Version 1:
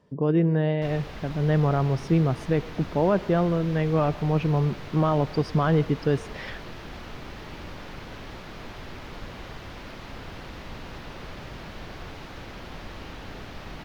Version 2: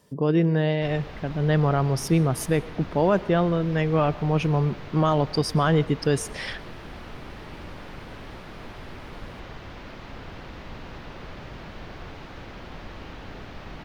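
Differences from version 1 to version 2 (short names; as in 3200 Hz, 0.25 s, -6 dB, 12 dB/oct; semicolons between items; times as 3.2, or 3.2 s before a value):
speech: remove tape spacing loss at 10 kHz 24 dB; background: add bell 15000 Hz -8.5 dB 1.7 oct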